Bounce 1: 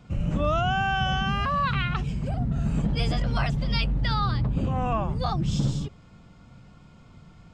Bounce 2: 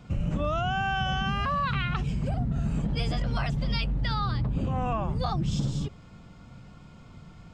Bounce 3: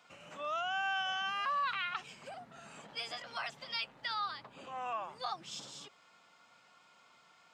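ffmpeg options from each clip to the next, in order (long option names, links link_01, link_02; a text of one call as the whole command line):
ffmpeg -i in.wav -af "acompressor=threshold=-26dB:ratio=6,volume=2dB" out.wav
ffmpeg -i in.wav -af "highpass=870,volume=-3.5dB" out.wav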